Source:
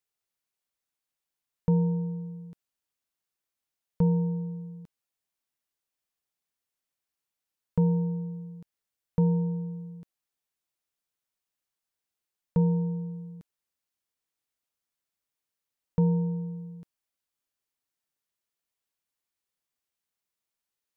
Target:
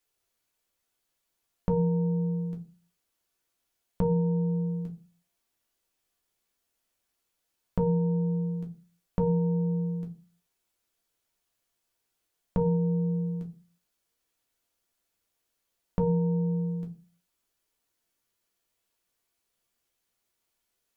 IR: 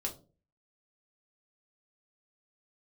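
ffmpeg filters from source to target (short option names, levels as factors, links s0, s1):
-filter_complex "[0:a]asettb=1/sr,asplit=3[s0][s1][s2];[s0]atrim=end=12.754[s3];[s1]atrim=start=12.75:end=13.33,asetpts=PTS-STARTPTS,afade=t=in:d=0.004:c=qsin,afade=t=out:st=0.576:d=0.004:c=qsin,equalizer=f=920:t=o:w=0.77:g=-4.5[s4];[s2]atrim=start=13.326[s5];[s3][s4]acrossfade=d=0.004:c1=hsin:c2=qsin[s6];[s6][s5]acrossfade=d=0.004:c1=qsin:c2=hsin[s7];[1:a]atrim=start_sample=2205,asetrate=52920,aresample=44100[s8];[s7][s8]afir=irnorm=-1:irlink=0,acompressor=threshold=0.0224:ratio=4,volume=2.66"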